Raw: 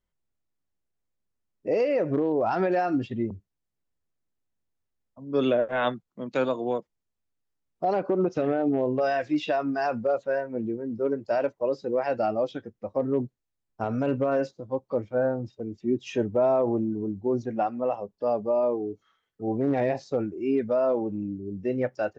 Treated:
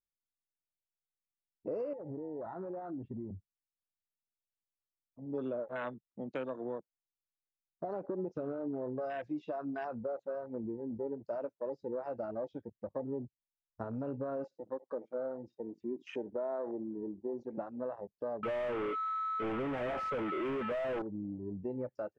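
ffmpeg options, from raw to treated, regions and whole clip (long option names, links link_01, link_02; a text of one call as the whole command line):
ffmpeg -i in.wav -filter_complex "[0:a]asettb=1/sr,asplit=3[link_01][link_02][link_03];[link_01]atrim=end=1.934[link_04];[link_02]atrim=start=1.93:end=5.26,asetpts=PTS-STARTPTS,afade=type=in:duration=0.004:curve=qsin,afade=type=out:start_time=3.326:duration=0.004:curve=qsin,lowpass=1300,acompressor=threshold=-33dB:ratio=5:attack=3.2:release=140:knee=1:detection=peak[link_05];[link_03]atrim=start=5.256[link_06];[link_04][link_05]acrossfade=duration=0.004:curve1=hsin:curve2=qsin[link_07];[link_07][link_06]acrossfade=duration=0.004:curve1=qsin:curve2=hsin,asettb=1/sr,asplit=3[link_08][link_09][link_10];[link_08]atrim=end=14.444[link_11];[link_09]atrim=start=14.44:end=17.58,asetpts=PTS-STARTPTS,afade=type=in:duration=0.004:curve=qsin,afade=type=out:start_time=3.136:duration=0.004:curve=qsin,highpass=280,aecho=1:1:71:0.0891,atrim=end_sample=138474[link_12];[link_10]atrim=start=17.576[link_13];[link_11][link_12]acrossfade=duration=0.004:curve1=hsin:curve2=qsin[link_14];[link_14][link_13]acrossfade=duration=0.004:curve1=qsin:curve2=hsin,asettb=1/sr,asplit=3[link_15][link_16][link_17];[link_15]atrim=end=18.434[link_18];[link_16]atrim=start=18.43:end=21.02,asetpts=PTS-STARTPTS,afade=type=in:duration=0.004:curve=qsin,afade=type=out:start_time=2.586:duration=0.004:curve=qsin,lowshelf=frequency=80:gain=-11,aeval=exprs='val(0)+0.00708*sin(2*PI*1300*n/s)':channel_layout=same,asplit=2[link_19][link_20];[link_20]highpass=frequency=720:poles=1,volume=34dB,asoftclip=type=tanh:threshold=-16dB[link_21];[link_19][link_21]amix=inputs=2:normalize=0,lowpass=frequency=2900:poles=1,volume=-6dB[link_22];[link_17]atrim=start=21.016[link_23];[link_18][link_22]acrossfade=duration=0.004:curve1=hsin:curve2=qsin[link_24];[link_24][link_23]acrossfade=duration=0.004:curve1=qsin:curve2=hsin,acompressor=threshold=-33dB:ratio=3,bandreject=frequency=750:width=12,afwtdn=0.01,volume=-4dB" out.wav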